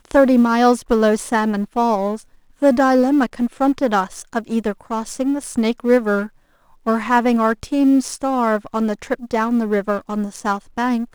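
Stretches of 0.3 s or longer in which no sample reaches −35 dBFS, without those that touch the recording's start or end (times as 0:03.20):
0:02.22–0:02.62
0:06.27–0:06.86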